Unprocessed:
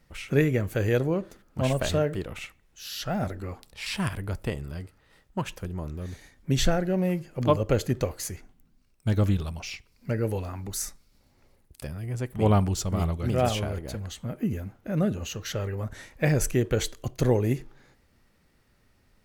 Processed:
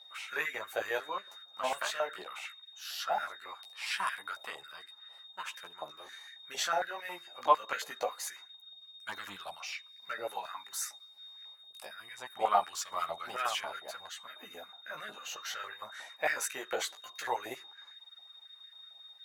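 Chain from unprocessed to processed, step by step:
steady tone 3,700 Hz −47 dBFS
multi-voice chorus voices 2, 0.22 Hz, delay 15 ms, depth 4.8 ms
high-pass on a step sequencer 11 Hz 740–1,700 Hz
level −2 dB

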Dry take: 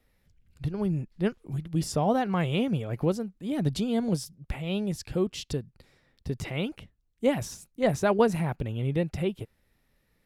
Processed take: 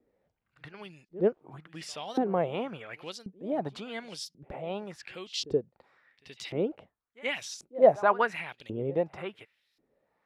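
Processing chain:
backwards echo 76 ms −20.5 dB
auto-filter band-pass saw up 0.92 Hz 330–5,000 Hz
level +8.5 dB

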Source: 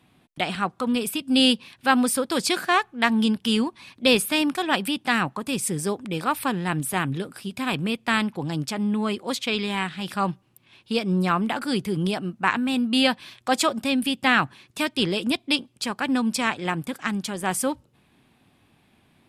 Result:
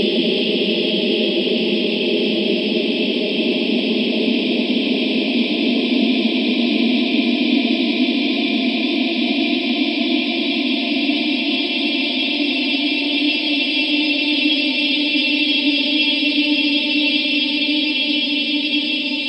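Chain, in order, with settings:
linear-phase brick-wall band-pass 190–8,400 Hz
phaser swept by the level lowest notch 570 Hz, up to 1,400 Hz, full sweep at −22 dBFS
extreme stretch with random phases 36×, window 0.50 s, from 0:15.10
level +8 dB

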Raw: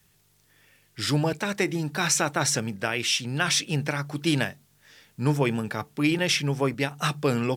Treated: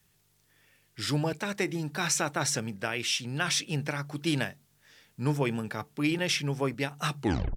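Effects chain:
turntable brake at the end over 0.39 s
level −4.5 dB

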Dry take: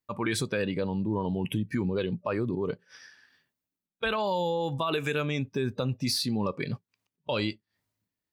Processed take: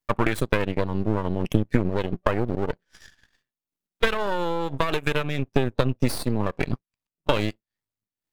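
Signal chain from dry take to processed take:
transient designer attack +10 dB, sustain −12 dB
half-wave rectification
dynamic equaliser 5,200 Hz, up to −8 dB, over −51 dBFS, Q 1.1
level +5.5 dB

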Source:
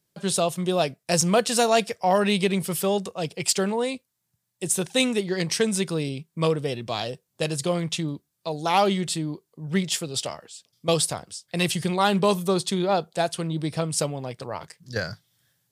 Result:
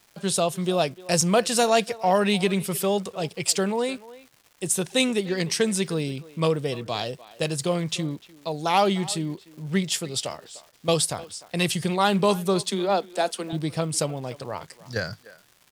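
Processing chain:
0:12.62–0:13.53: Butterworth high-pass 190 Hz 72 dB per octave
surface crackle 440 per second −43 dBFS
far-end echo of a speakerphone 300 ms, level −18 dB

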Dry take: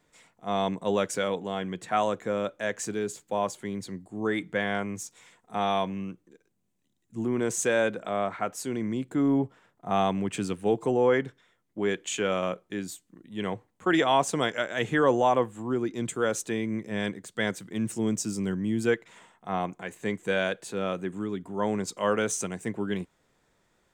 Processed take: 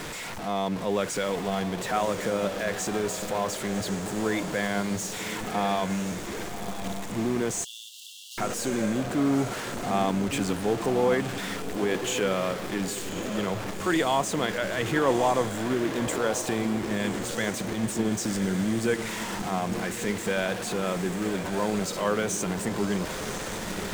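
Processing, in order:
converter with a step at zero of −25 dBFS
in parallel at +1 dB: brickwall limiter −21 dBFS, peak gain reduction 10.5 dB
on the sum: high-shelf EQ 11,000 Hz −7.5 dB
on a send: feedback delay with all-pass diffusion 1,068 ms, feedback 49%, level −9 dB
on the sum: power curve on the samples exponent 1.4
0:07.64–0:08.38: linear-phase brick-wall high-pass 2,700 Hz
level −4 dB

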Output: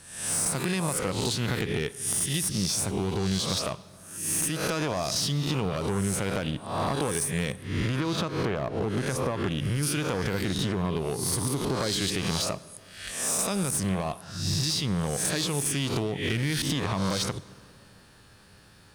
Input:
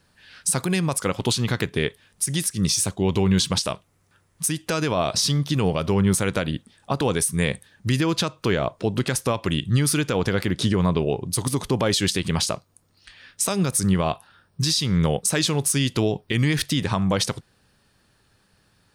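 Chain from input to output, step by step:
peak hold with a rise ahead of every peak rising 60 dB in 0.66 s
0:07.52–0:09.83: high-shelf EQ 3,500 Hz −10 dB
downward compressor 12 to 1, threshold −29 dBFS, peak gain reduction 16 dB
asymmetric clip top −30.5 dBFS
dense smooth reverb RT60 2.6 s, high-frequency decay 0.6×, DRR 17.5 dB
level +5.5 dB

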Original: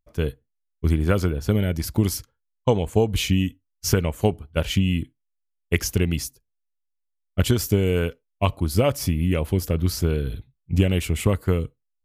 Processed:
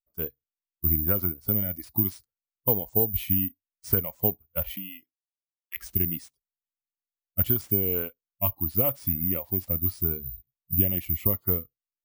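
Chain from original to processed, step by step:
0:04.75–0:05.76: high-pass filter 320 Hz → 1,000 Hz 12 dB per octave
noise reduction from a noise print of the clip's start 20 dB
low-pass filter 1,600 Hz 6 dB per octave
bad sample-rate conversion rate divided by 3×, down none, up zero stuff
level −8.5 dB

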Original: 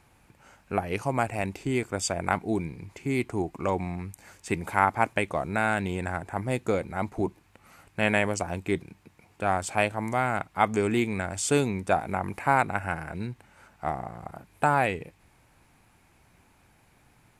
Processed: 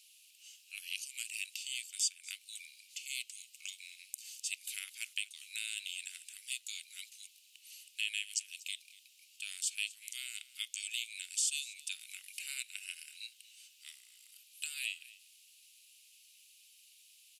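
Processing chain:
Chebyshev high-pass filter 2,800 Hz, order 5
downward compressor 2 to 1, threshold −48 dBFS, peak gain reduction 12 dB
single-tap delay 240 ms −20 dB
level +9.5 dB

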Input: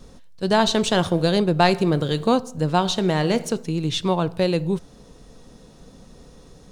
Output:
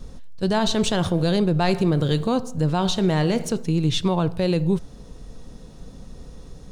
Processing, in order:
low-shelf EQ 130 Hz +10.5 dB
brickwall limiter −11 dBFS, peak gain reduction 8 dB

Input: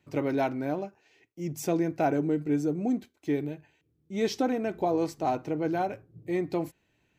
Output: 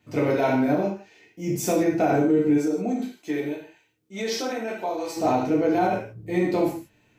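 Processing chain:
reverb whose tail is shaped and stops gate 200 ms falling, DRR −5 dB
brickwall limiter −15 dBFS, peak gain reduction 6.5 dB
0:02.57–0:05.16: high-pass filter 390 Hz → 1,300 Hz 6 dB per octave
level +2.5 dB

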